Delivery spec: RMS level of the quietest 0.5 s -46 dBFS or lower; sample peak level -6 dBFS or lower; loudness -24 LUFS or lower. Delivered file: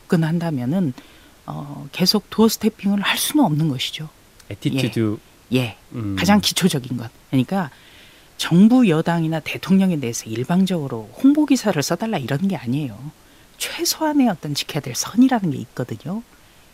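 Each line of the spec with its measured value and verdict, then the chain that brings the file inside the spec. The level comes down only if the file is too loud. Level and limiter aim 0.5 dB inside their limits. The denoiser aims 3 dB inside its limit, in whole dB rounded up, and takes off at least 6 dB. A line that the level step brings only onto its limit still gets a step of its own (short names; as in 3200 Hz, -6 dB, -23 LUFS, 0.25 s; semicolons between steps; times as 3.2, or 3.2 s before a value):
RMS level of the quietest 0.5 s -49 dBFS: OK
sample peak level -3.5 dBFS: fail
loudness -19.5 LUFS: fail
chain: gain -5 dB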